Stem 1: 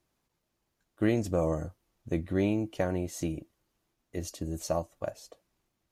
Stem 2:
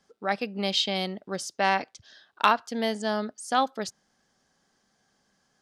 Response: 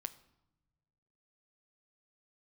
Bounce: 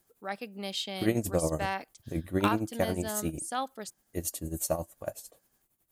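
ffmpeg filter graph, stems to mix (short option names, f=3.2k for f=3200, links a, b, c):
-filter_complex "[0:a]tremolo=f=11:d=0.75,volume=2dB[a];[1:a]volume=-9dB[b];[a][b]amix=inputs=2:normalize=0,aexciter=amount=2.9:drive=8.9:freq=7.7k"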